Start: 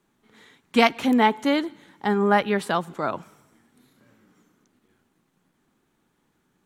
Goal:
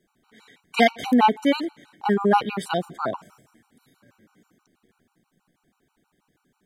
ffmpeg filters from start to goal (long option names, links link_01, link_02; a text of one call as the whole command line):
ffmpeg -i in.wav -af "afftfilt=real='re*gt(sin(2*PI*6.2*pts/sr)*(1-2*mod(floor(b*sr/1024/760),2)),0)':imag='im*gt(sin(2*PI*6.2*pts/sr)*(1-2*mod(floor(b*sr/1024/760),2)),0)':win_size=1024:overlap=0.75,volume=3dB" out.wav